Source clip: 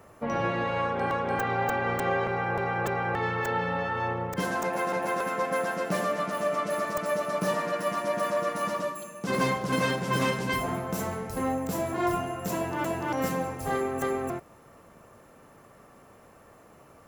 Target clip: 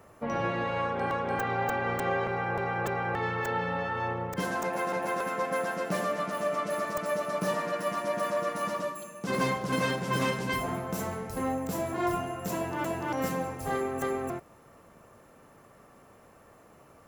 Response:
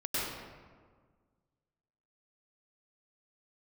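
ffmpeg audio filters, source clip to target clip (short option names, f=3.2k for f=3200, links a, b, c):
-af "volume=-2dB"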